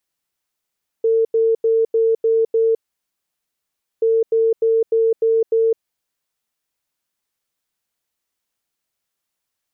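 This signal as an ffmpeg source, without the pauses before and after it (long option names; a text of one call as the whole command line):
ffmpeg -f lavfi -i "aevalsrc='0.237*sin(2*PI*451*t)*clip(min(mod(mod(t,2.98),0.3),0.21-mod(mod(t,2.98),0.3))/0.005,0,1)*lt(mod(t,2.98),1.8)':duration=5.96:sample_rate=44100" out.wav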